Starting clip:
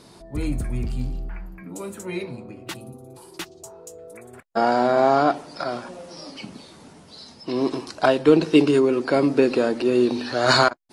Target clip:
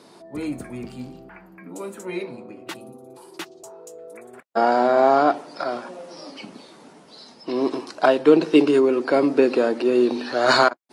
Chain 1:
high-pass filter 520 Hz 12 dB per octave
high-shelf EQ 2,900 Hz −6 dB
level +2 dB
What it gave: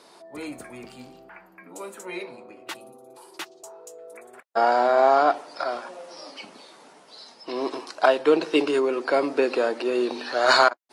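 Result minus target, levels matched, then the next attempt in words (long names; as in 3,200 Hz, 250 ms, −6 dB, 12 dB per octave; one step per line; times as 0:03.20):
250 Hz band −6.0 dB
high-pass filter 250 Hz 12 dB per octave
high-shelf EQ 2,900 Hz −6 dB
level +2 dB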